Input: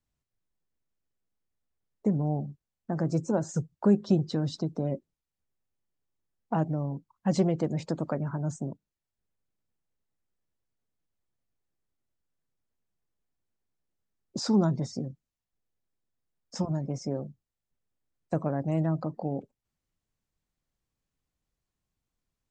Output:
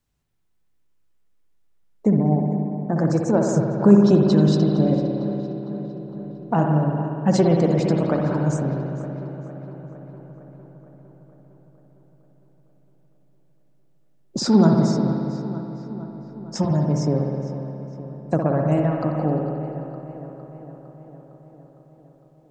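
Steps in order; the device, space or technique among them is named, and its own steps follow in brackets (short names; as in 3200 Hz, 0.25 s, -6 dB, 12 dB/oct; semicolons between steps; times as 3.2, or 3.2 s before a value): dub delay into a spring reverb (darkening echo 0.457 s, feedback 66%, low-pass 3700 Hz, level -13 dB; spring tank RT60 2.5 s, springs 59 ms, chirp 30 ms, DRR 0.5 dB); gain +7.5 dB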